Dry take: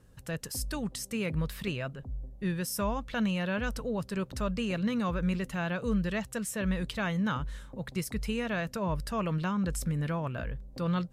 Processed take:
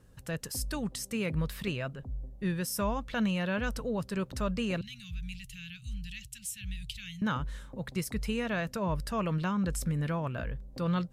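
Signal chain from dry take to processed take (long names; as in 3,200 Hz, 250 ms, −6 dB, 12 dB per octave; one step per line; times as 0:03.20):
0:04.81–0:07.22: elliptic band-stop filter 120–2,700 Hz, stop band 70 dB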